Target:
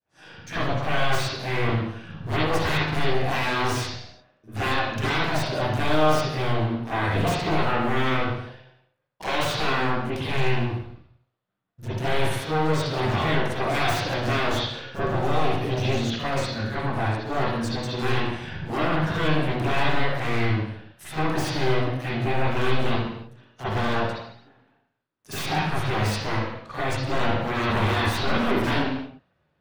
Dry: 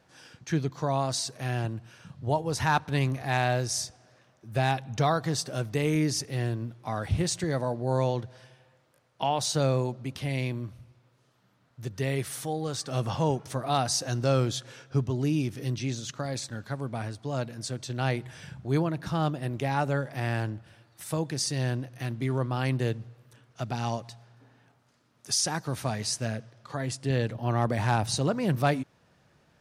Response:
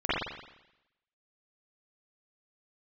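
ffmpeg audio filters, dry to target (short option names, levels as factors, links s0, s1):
-filter_complex "[0:a]agate=range=0.0224:threshold=0.00251:ratio=3:detection=peak,aeval=exprs='0.0355*(abs(mod(val(0)/0.0355+3,4)-2)-1)':c=same,aeval=exprs='0.0376*(cos(1*acos(clip(val(0)/0.0376,-1,1)))-cos(1*PI/2))+0.00237*(cos(3*acos(clip(val(0)/0.0376,-1,1)))-cos(3*PI/2))+0.00335*(cos(5*acos(clip(val(0)/0.0376,-1,1)))-cos(5*PI/2))+0.00133*(cos(6*acos(clip(val(0)/0.0376,-1,1)))-cos(6*PI/2))+0.00335*(cos(7*acos(clip(val(0)/0.0376,-1,1)))-cos(7*PI/2))':c=same[s0];[1:a]atrim=start_sample=2205,afade=t=out:st=0.45:d=0.01,atrim=end_sample=20286,asetrate=48510,aresample=44100[s1];[s0][s1]afir=irnorm=-1:irlink=0"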